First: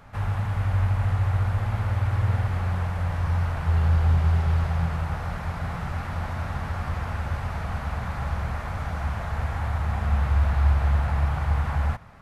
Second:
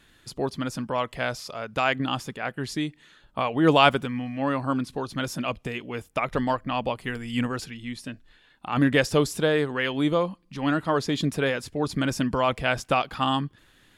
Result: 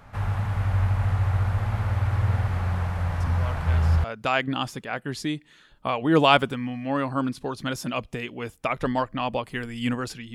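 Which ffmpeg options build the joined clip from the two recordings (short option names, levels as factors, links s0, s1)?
-filter_complex "[1:a]asplit=2[s0][s1];[0:a]apad=whole_dur=10.34,atrim=end=10.34,atrim=end=4.042[s2];[s1]atrim=start=1.558:end=7.86[s3];[s0]atrim=start=0.72:end=1.56,asetpts=PTS-STARTPTS,volume=0.266,afade=t=in:d=0.004:c=hsin,afade=t=out:st=0.836:d=0.004:c=hsin,adelay=3200[s4];[s2][s3]acrossfade=d=0.004:c1=hsin:c2=hsin[s5];[s5][s4]amix=inputs=2:normalize=0"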